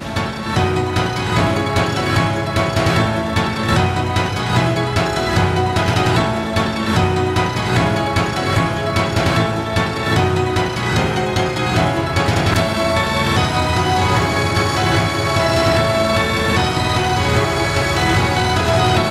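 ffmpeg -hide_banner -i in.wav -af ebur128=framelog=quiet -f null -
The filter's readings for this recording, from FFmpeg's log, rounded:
Integrated loudness:
  I:         -16.7 LUFS
  Threshold: -26.7 LUFS
Loudness range:
  LRA:         1.6 LU
  Threshold: -36.7 LUFS
  LRA low:   -17.4 LUFS
  LRA high:  -15.8 LUFS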